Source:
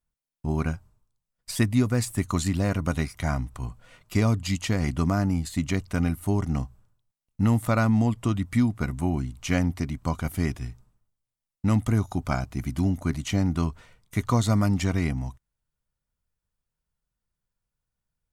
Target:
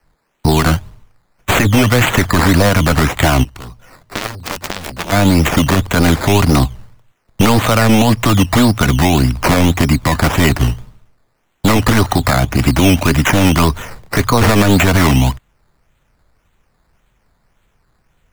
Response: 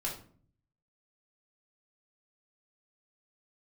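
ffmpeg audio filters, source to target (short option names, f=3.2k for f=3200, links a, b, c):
-filter_complex "[0:a]acrossover=split=220|420|3000[a][b][c][d];[a]aeval=exprs='0.0562*(abs(mod(val(0)/0.0562+3,4)-2)-1)':c=same[e];[e][b][c][d]amix=inputs=4:normalize=0,acrusher=samples=12:mix=1:aa=0.000001:lfo=1:lforange=7.2:lforate=1.8,acrossover=split=260|700|2800[f][g][h][i];[f]acompressor=threshold=-35dB:ratio=4[j];[g]acompressor=threshold=-39dB:ratio=4[k];[h]acompressor=threshold=-34dB:ratio=4[l];[i]acompressor=threshold=-41dB:ratio=4[m];[j][k][l][m]amix=inputs=4:normalize=0,asplit=3[n][o][p];[n]afade=t=out:st=3.43:d=0.02[q];[o]aeval=exprs='0.106*(cos(1*acos(clip(val(0)/0.106,-1,1)))-cos(1*PI/2))+0.0422*(cos(3*acos(clip(val(0)/0.106,-1,1)))-cos(3*PI/2))':c=same,afade=t=in:st=3.43:d=0.02,afade=t=out:st=5.11:d=0.02[r];[p]afade=t=in:st=5.11:d=0.02[s];[q][r][s]amix=inputs=3:normalize=0,alimiter=level_in=25.5dB:limit=-1dB:release=50:level=0:latency=1,volume=-1dB"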